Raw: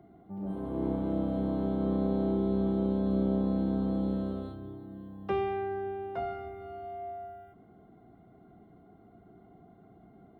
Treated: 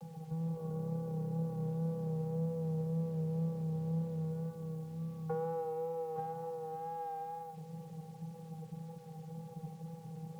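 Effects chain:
elliptic low-pass filter 1,200 Hz, stop band 40 dB
downward compressor 3 to 1, threshold −46 dBFS, peak gain reduction 15.5 dB
channel vocoder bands 16, square 162 Hz
in parallel at −10.5 dB: asymmetric clip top −56.5 dBFS
on the sum: bit-depth reduction 12 bits, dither none
tape wow and flutter 29 cents
on a send at −14 dB: convolution reverb RT60 0.85 s, pre-delay 103 ms
on the sum: level +7 dB

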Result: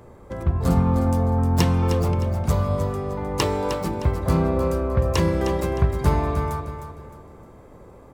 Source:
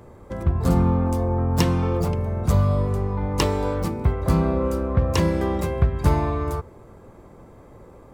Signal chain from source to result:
mains-hum notches 50/100/150/200/250/300/350 Hz
repeating echo 308 ms, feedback 34%, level −9 dB

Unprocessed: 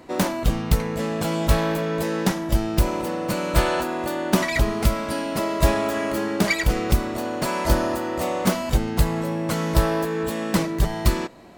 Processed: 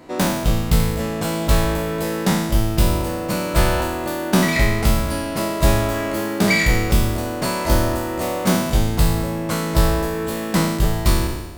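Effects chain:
peak hold with a decay on every bin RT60 1.08 s

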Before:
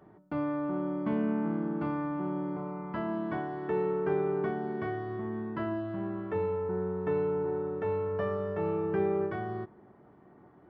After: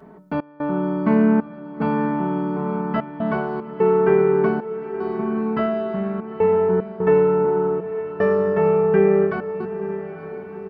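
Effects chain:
comb filter 4.6 ms, depth 96%
gate pattern "xx.xxxx..xxxxxx." 75 BPM −24 dB
feedback delay with all-pass diffusion 913 ms, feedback 49%, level −12 dB
level +9 dB

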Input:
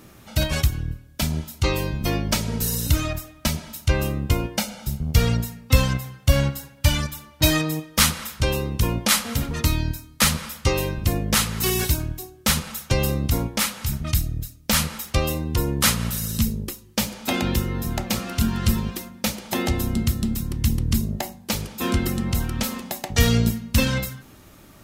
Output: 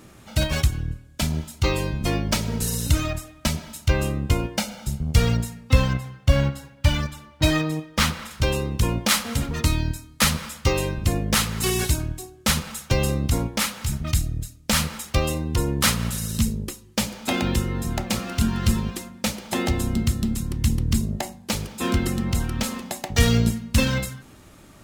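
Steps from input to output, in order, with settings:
0:05.72–0:08.31: high-shelf EQ 5,800 Hz −10.5 dB
linearly interpolated sample-rate reduction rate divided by 2×

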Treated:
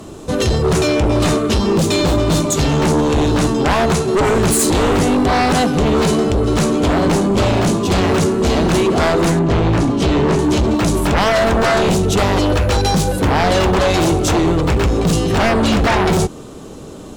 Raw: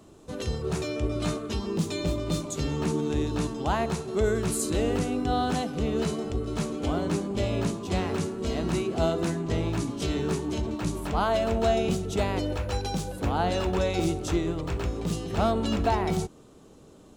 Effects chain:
0:09.39–0:10.39: low-pass filter 2,600 Hz 6 dB per octave
in parallel at +1.5 dB: brickwall limiter −20.5 dBFS, peak gain reduction 8 dB
on the sum: sine wavefolder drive 10 dB, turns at −8.5 dBFS
level −2 dB

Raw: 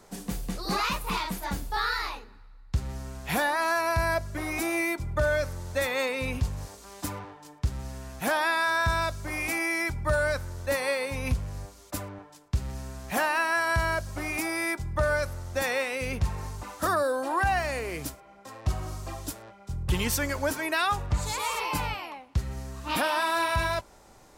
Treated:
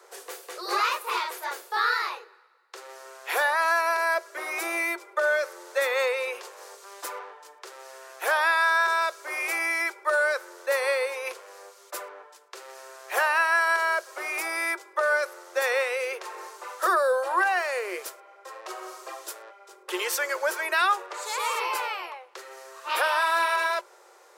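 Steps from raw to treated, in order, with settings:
Chebyshev high-pass with heavy ripple 350 Hz, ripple 6 dB
level +5.5 dB

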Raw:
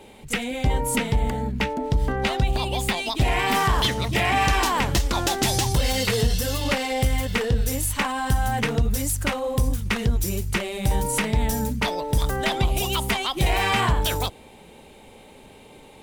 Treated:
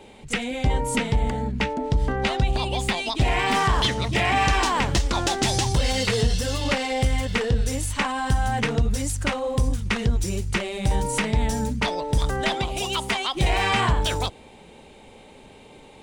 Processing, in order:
Savitzky-Golay smoothing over 9 samples
0:09.46–0:09.97: surface crackle 250 per second → 50 per second −51 dBFS
0:12.54–0:13.35: low-shelf EQ 150 Hz −10.5 dB

